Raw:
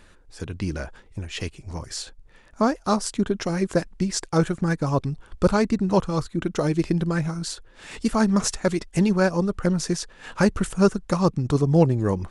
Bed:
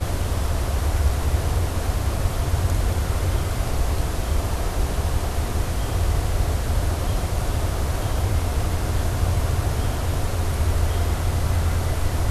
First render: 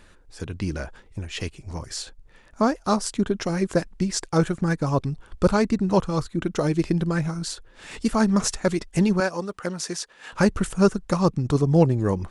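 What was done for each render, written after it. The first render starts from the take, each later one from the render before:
0:09.20–0:10.33: high-pass filter 590 Hz 6 dB per octave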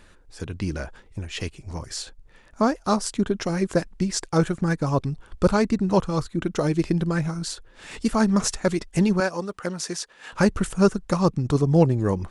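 no processing that can be heard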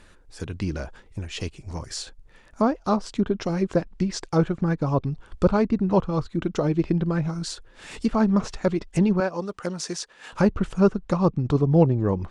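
treble cut that deepens with the level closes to 2,800 Hz, closed at −19 dBFS
dynamic equaliser 1,800 Hz, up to −6 dB, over −43 dBFS, Q 1.7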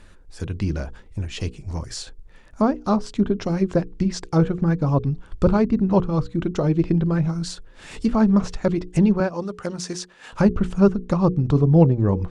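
low-shelf EQ 260 Hz +6.5 dB
mains-hum notches 60/120/180/240/300/360/420/480 Hz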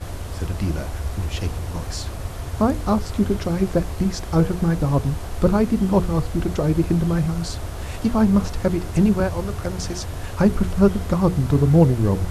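mix in bed −7 dB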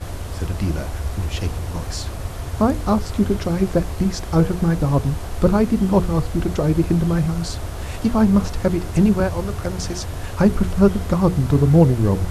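level +1.5 dB
brickwall limiter −1 dBFS, peak gain reduction 0.5 dB

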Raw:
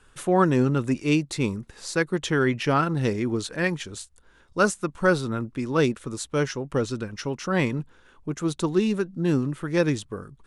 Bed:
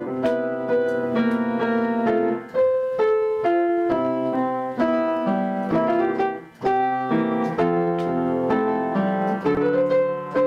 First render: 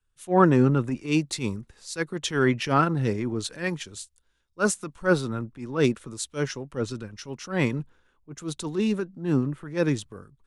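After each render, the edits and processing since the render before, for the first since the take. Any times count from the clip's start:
transient designer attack −8 dB, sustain −1 dB
multiband upward and downward expander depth 70%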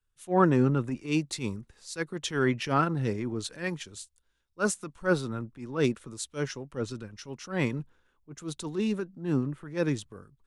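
level −4 dB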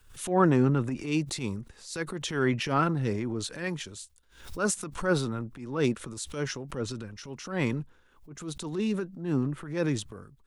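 transient designer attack −2 dB, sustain +5 dB
background raised ahead of every attack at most 110 dB per second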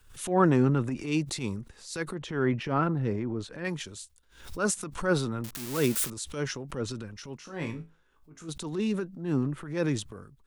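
0:02.14–0:03.65: low-pass filter 1,500 Hz 6 dB per octave
0:05.44–0:06.10: spike at every zero crossing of −22 dBFS
0:07.37–0:08.49: tuned comb filter 54 Hz, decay 0.26 s, mix 90%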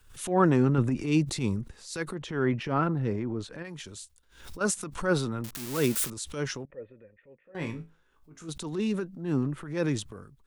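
0:00.78–0:01.76: low-shelf EQ 370 Hz +6 dB
0:03.62–0:04.61: downward compressor, threshold −37 dBFS
0:06.65–0:07.55: formant resonators in series e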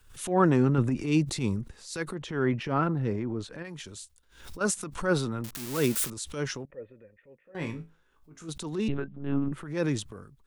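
0:08.88–0:09.52: one-pitch LPC vocoder at 8 kHz 140 Hz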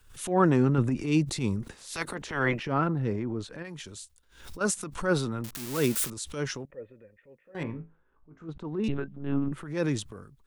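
0:01.61–0:02.59: ceiling on every frequency bin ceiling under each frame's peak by 18 dB
0:07.63–0:08.84: low-pass filter 1,400 Hz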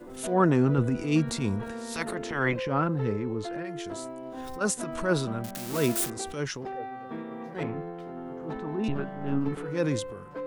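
mix in bed −16.5 dB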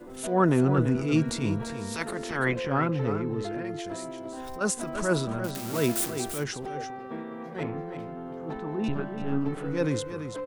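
single-tap delay 338 ms −9 dB

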